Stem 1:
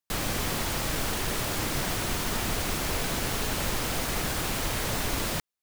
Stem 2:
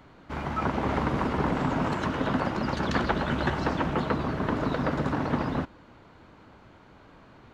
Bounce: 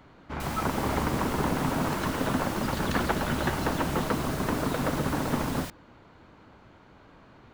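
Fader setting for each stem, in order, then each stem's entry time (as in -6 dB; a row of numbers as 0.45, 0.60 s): -9.0, -1.0 dB; 0.30, 0.00 s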